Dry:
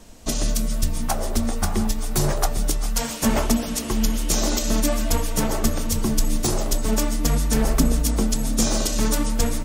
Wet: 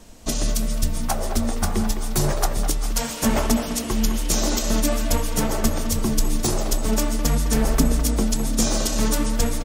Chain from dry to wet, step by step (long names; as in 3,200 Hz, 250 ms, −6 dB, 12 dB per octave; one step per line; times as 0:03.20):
far-end echo of a speakerphone 210 ms, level −8 dB